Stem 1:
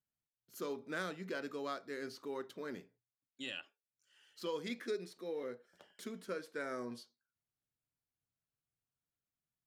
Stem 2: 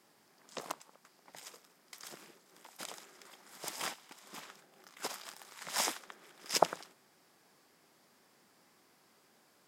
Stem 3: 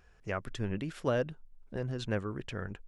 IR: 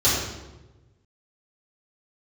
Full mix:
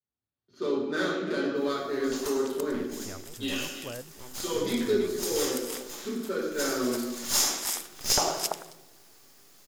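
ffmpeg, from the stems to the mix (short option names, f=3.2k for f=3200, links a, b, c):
-filter_complex "[0:a]dynaudnorm=f=200:g=3:m=10dB,equalizer=f=125:t=o:w=1:g=-6,equalizer=f=250:t=o:w=1:g=5,equalizer=f=4k:t=o:w=1:g=7,equalizer=f=8k:t=o:w=1:g=-4,adynamicsmooth=sensitivity=3.5:basefreq=2.4k,volume=-10dB,asplit=4[a][b][c][d];[b]volume=-9dB[e];[c]volume=-4.5dB[f];[1:a]aemphasis=mode=production:type=75kf,adelay=1550,volume=1.5dB,asplit=3[g][h][i];[h]volume=-18dB[j];[i]volume=-9dB[k];[2:a]adelay=2450,volume=-7dB,asplit=2[l][m];[m]volume=-3.5dB[n];[d]apad=whole_len=494886[o];[g][o]sidechaincompress=threshold=-49dB:ratio=4:attack=50:release=1430[p];[p][l]amix=inputs=2:normalize=0,aeval=exprs='abs(val(0))':c=same,acompressor=threshold=-46dB:ratio=1.5,volume=0dB[q];[3:a]atrim=start_sample=2205[r];[e][j]amix=inputs=2:normalize=0[s];[s][r]afir=irnorm=-1:irlink=0[t];[f][k][n]amix=inputs=3:normalize=0,aecho=0:1:340:1[u];[a][q][t][u]amix=inputs=4:normalize=0"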